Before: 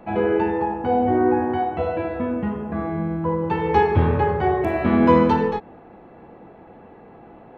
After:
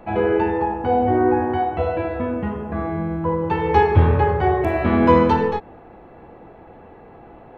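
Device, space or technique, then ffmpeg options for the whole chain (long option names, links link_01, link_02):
low shelf boost with a cut just above: -af "lowshelf=frequency=99:gain=7,equalizer=frequency=200:width_type=o:width=1.1:gain=-5,volume=2dB"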